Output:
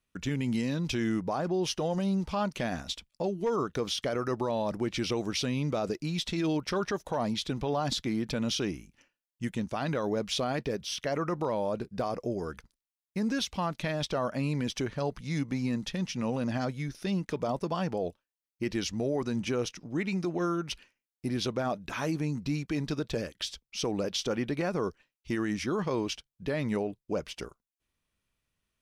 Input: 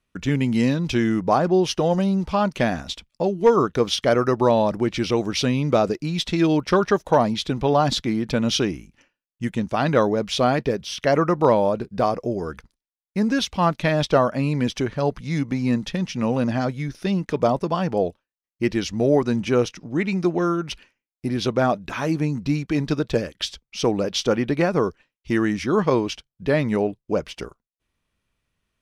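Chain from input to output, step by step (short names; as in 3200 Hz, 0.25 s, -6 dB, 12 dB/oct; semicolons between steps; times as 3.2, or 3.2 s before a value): high shelf 4300 Hz +6 dB; limiter -14.5 dBFS, peak gain reduction 9 dB; gain -7 dB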